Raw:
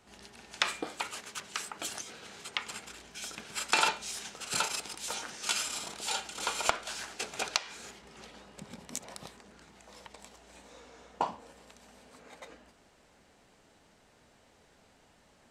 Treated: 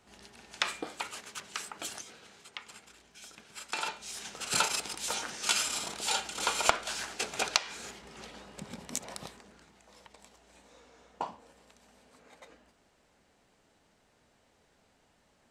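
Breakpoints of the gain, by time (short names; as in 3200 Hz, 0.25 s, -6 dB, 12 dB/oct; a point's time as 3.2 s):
1.88 s -1.5 dB
2.47 s -9 dB
3.8 s -9 dB
4.41 s +3 dB
9.2 s +3 dB
9.79 s -5 dB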